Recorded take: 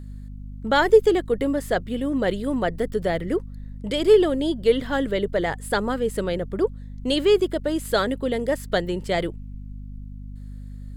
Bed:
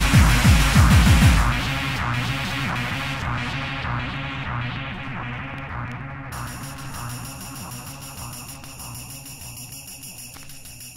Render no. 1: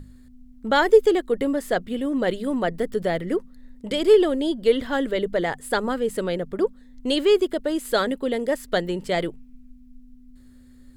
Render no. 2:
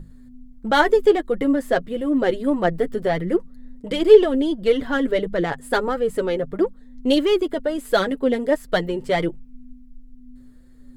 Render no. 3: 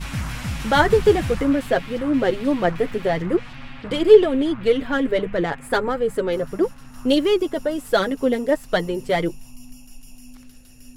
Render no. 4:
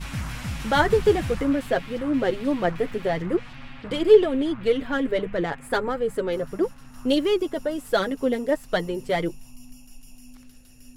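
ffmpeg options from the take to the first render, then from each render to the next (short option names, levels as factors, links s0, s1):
-af "bandreject=f=50:t=h:w=6,bandreject=f=100:t=h:w=6,bandreject=f=150:t=h:w=6,bandreject=f=200:t=h:w=6"
-filter_complex "[0:a]asplit=2[s0][s1];[s1]adynamicsmooth=sensitivity=2.5:basefreq=1900,volume=1.12[s2];[s0][s2]amix=inputs=2:normalize=0,flanger=delay=5.6:depth=2.6:regen=19:speed=1.5:shape=triangular"
-filter_complex "[1:a]volume=0.224[s0];[0:a][s0]amix=inputs=2:normalize=0"
-af "volume=0.668"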